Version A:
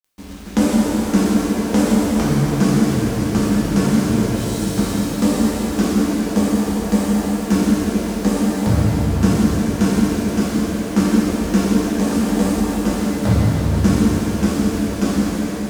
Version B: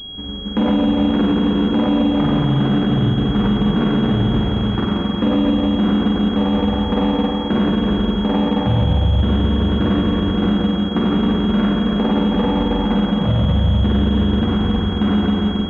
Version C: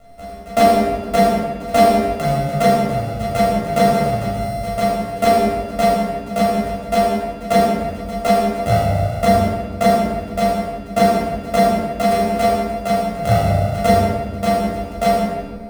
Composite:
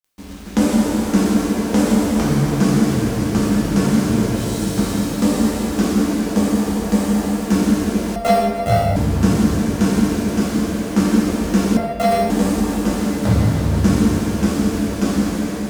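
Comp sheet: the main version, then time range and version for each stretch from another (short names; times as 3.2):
A
8.16–8.96 from C
11.77–12.3 from C
not used: B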